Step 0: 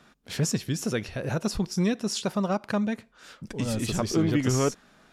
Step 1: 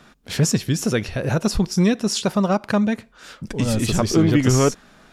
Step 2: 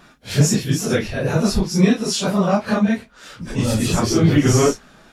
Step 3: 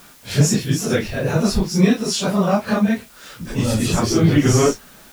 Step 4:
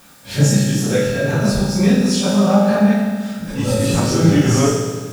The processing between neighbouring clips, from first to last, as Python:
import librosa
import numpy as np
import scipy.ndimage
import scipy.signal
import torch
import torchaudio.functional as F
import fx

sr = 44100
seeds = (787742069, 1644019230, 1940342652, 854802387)

y1 = fx.low_shelf(x, sr, hz=63.0, db=6.5)
y1 = y1 * librosa.db_to_amplitude(7.0)
y2 = fx.phase_scramble(y1, sr, seeds[0], window_ms=100)
y2 = y2 * librosa.db_to_amplitude(2.0)
y3 = fx.quant_dither(y2, sr, seeds[1], bits=8, dither='triangular')
y4 = fx.rev_fdn(y3, sr, rt60_s=1.6, lf_ratio=1.35, hf_ratio=0.95, size_ms=11.0, drr_db=-2.5)
y4 = y4 * librosa.db_to_amplitude(-3.0)